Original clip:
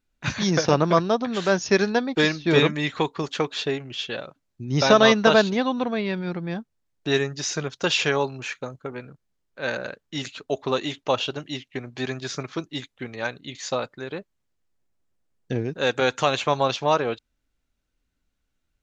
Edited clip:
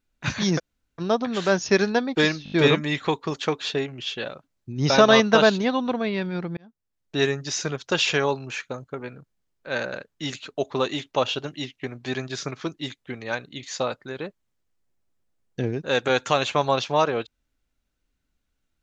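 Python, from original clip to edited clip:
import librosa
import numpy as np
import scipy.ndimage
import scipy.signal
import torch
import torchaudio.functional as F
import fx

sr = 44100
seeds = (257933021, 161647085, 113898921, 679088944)

y = fx.edit(x, sr, fx.room_tone_fill(start_s=0.58, length_s=0.42, crossfade_s=0.04),
    fx.stutter(start_s=2.44, slice_s=0.02, count=5),
    fx.fade_in_span(start_s=6.49, length_s=0.66), tone=tone)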